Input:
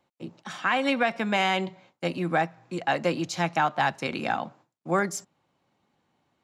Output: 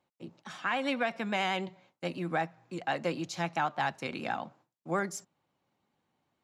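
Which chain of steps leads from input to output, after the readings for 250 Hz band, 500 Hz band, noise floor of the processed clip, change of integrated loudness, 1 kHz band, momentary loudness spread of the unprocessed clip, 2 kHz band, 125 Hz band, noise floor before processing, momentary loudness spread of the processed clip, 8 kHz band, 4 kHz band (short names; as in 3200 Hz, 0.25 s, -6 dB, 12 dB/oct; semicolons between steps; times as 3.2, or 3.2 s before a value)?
-6.5 dB, -6.5 dB, -83 dBFS, -6.5 dB, -6.5 dB, 13 LU, -6.5 dB, -6.5 dB, -77 dBFS, 13 LU, -6.5 dB, -6.5 dB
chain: vibrato 9.3 Hz 42 cents; gain -6.5 dB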